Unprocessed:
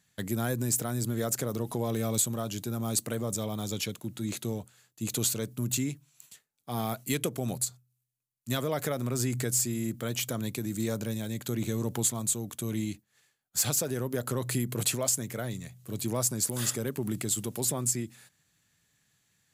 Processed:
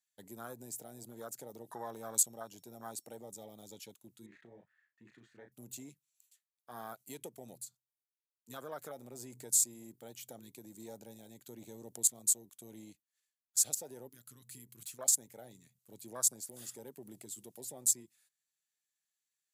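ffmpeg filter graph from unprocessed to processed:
-filter_complex "[0:a]asettb=1/sr,asplit=3[s0][s1][s2];[s0]atrim=end=1.734[s3];[s1]atrim=start=1.73:end=3.17,asetpts=PTS-STARTPTS,afade=t=in:d=0.004:c=qsin,afade=t=out:st=1.436:d=0.004:c=qsin,equalizer=f=840:t=o:w=0.52:g=9,aeval=exprs='val(0)+0.001*sin(2*PI*5500*n/s)':c=same[s4];[s2]atrim=start=3.166[s5];[s3][s4]acrossfade=d=0.004:c1=hsin:c2=qsin[s6];[s6][s5]acrossfade=d=0.004:c1=qsin:c2=hsin,asettb=1/sr,asplit=3[s7][s8][s9];[s7]atrim=end=4.264[s10];[s8]atrim=start=4.26:end=5.52,asetpts=PTS-STARTPTS,afade=t=in:d=0.004:c=qsin,afade=t=out:st=1.256:d=0.004:c=qsin,asplit=2[s11][s12];[s12]adelay=34,volume=0.501[s13];[s11][s13]amix=inputs=2:normalize=0,atrim=end_sample=55566,acompressor=threshold=0.0178:ratio=3:attack=3.2:release=140:knee=1:detection=peak,lowpass=f=1800:t=q:w=13[s14];[s9]atrim=start=5.516[s15];[s10][s14]acrossfade=d=0.004:c1=hsin:c2=qsin[s16];[s16][s15]acrossfade=d=0.004:c1=qsin:c2=hsin,asettb=1/sr,asplit=3[s17][s18][s19];[s17]atrim=end=14.094[s20];[s18]atrim=start=14.09:end=14.99,asetpts=PTS-STARTPTS,afade=t=in:d=0.004:c=qsin,afade=t=out:st=0.896:d=0.004:c=qsin,equalizer=f=480:t=o:w=2.3:g=-12.5,asoftclip=type=hard:threshold=0.0668[s21];[s19]atrim=start=14.986[s22];[s20][s21]acrossfade=d=0.004:c1=hsin:c2=qsin[s23];[s23][s22]acrossfade=d=0.004:c1=qsin:c2=hsin,afwtdn=0.0251,highpass=f=1200:p=1,highshelf=f=4100:g=8,volume=0.531"

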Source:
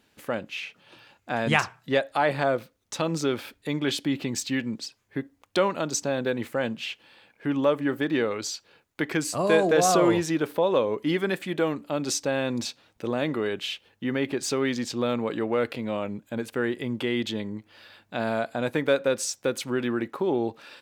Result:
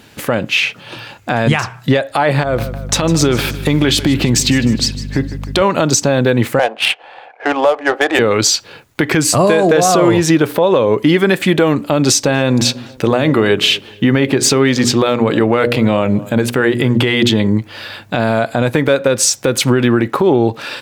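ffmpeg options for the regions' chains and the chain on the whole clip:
-filter_complex "[0:a]asettb=1/sr,asplit=3[s0][s1][s2];[s0]atrim=end=2.434[s3];[s1]atrim=start=2.43:end=5.62,asetpts=PTS-STARTPTS,afade=t=in:d=0.004:c=qsin,afade=t=out:st=3.186:d=0.004:c=qsin,acompressor=threshold=0.0355:ratio=5:attack=3.2:release=140:knee=1:detection=peak,aeval=exprs='val(0)+0.00562*(sin(2*PI*50*n/s)+sin(2*PI*2*50*n/s)/2+sin(2*PI*3*50*n/s)/3+sin(2*PI*4*50*n/s)/4+sin(2*PI*5*50*n/s)/5)':c=same,aecho=1:1:154|308|462|616|770:0.158|0.0808|0.0412|0.021|0.0107,atrim=end_sample=140679[s4];[s2]atrim=start=5.616[s5];[s3][s4]acrossfade=d=0.004:c1=hsin:c2=qsin[s6];[s6][s5]acrossfade=d=0.004:c1=qsin:c2=hsin,asettb=1/sr,asplit=3[s7][s8][s9];[s7]atrim=end=6.594[s10];[s8]atrim=start=6.59:end=8.19,asetpts=PTS-STARTPTS,afade=t=in:d=0.004:c=qsin,afade=t=out:st=1.596:d=0.004:c=qsin,highpass=f=460:w=0.5412,highpass=f=460:w=1.3066,equalizer=f=740:w=4.9:g=14.5,adynamicsmooth=sensitivity=5:basefreq=1800[s11];[s9]atrim=start=8.186[s12];[s10][s11]acrossfade=d=0.004:c1=hsin:c2=qsin[s13];[s13][s12]acrossfade=d=0.004:c1=qsin:c2=hsin,asettb=1/sr,asplit=3[s14][s15][s16];[s14]atrim=end=12.104[s17];[s15]atrim=start=12.1:end=17.48,asetpts=PTS-STARTPTS,afade=t=in:d=0.004:c=qsin,afade=t=out:st=5.376:d=0.004:c=qsin,bandreject=f=60:t=h:w=6,bandreject=f=120:t=h:w=6,bandreject=f=180:t=h:w=6,bandreject=f=240:t=h:w=6,bandreject=f=300:t=h:w=6,bandreject=f=360:t=h:w=6,bandreject=f=420:t=h:w=6,bandreject=f=480:t=h:w=6,bandreject=f=540:t=h:w=6,bandreject=f=600:t=h:w=6,asplit=2[s18][s19];[s19]adelay=239,lowpass=f=1300:p=1,volume=0.0708,asplit=2[s20][s21];[s21]adelay=239,lowpass=f=1300:p=1,volume=0.3[s22];[s18][s20][s22]amix=inputs=3:normalize=0,atrim=end_sample=237258[s23];[s16]atrim=start=17.476[s24];[s17][s23]acrossfade=d=0.004:c1=hsin:c2=qsin[s25];[s25][s24]acrossfade=d=0.004:c1=qsin:c2=hsin,equalizer=f=120:w=2.4:g=7.5,acompressor=threshold=0.0398:ratio=6,alimiter=level_in=12.6:limit=0.891:release=50:level=0:latency=1,volume=0.891"

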